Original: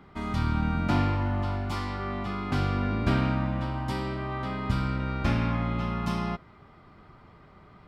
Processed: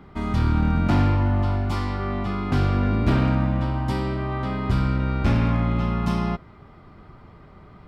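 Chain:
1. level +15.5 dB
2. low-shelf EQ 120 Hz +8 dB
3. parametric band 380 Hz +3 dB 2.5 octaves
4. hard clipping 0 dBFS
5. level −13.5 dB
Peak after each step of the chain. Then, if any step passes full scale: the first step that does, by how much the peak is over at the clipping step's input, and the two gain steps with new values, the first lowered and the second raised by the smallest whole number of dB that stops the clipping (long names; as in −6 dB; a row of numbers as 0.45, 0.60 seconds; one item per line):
+3.0, +7.0, +8.0, 0.0, −13.5 dBFS
step 1, 8.0 dB
step 1 +7.5 dB, step 5 −5.5 dB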